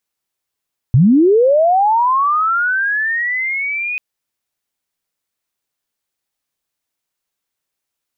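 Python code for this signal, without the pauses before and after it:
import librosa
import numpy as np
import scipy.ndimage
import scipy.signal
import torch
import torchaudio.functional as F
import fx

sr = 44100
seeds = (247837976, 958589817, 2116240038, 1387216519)

y = fx.chirp(sr, length_s=3.04, from_hz=110.0, to_hz=2500.0, law='linear', from_db=-6.0, to_db=-18.5)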